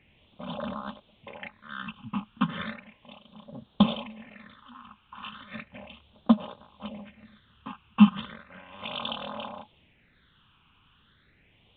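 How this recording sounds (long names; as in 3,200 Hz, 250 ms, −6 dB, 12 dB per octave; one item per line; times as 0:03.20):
a quantiser's noise floor 10 bits, dither triangular
phaser sweep stages 8, 0.35 Hz, lowest notch 570–2,100 Hz
mu-law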